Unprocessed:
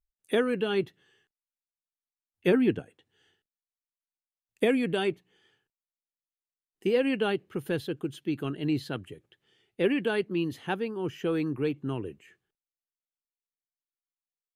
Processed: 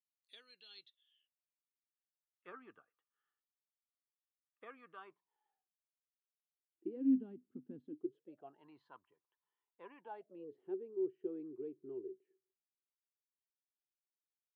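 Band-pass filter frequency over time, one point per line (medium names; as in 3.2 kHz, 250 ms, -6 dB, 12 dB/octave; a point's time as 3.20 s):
band-pass filter, Q 18
0.74 s 4.2 kHz
2.48 s 1.2 kHz
4.94 s 1.2 kHz
7.21 s 250 Hz
7.84 s 250 Hz
8.65 s 1 kHz
9.97 s 1 kHz
10.60 s 380 Hz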